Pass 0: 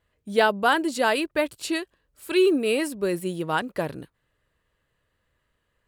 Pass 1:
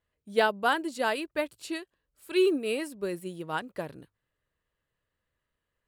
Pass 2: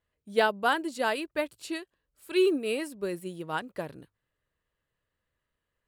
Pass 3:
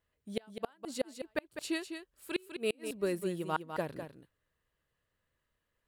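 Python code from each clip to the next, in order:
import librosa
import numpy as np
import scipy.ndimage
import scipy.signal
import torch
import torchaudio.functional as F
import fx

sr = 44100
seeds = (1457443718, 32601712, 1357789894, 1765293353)

y1 = fx.hum_notches(x, sr, base_hz=50, count=2)
y1 = fx.upward_expand(y1, sr, threshold_db=-28.0, expansion=1.5)
y1 = y1 * 10.0 ** (-3.5 / 20.0)
y2 = y1
y3 = fx.gate_flip(y2, sr, shuts_db=-19.0, range_db=-37)
y3 = y3 + 10.0 ** (-8.5 / 20.0) * np.pad(y3, (int(202 * sr / 1000.0), 0))[:len(y3)]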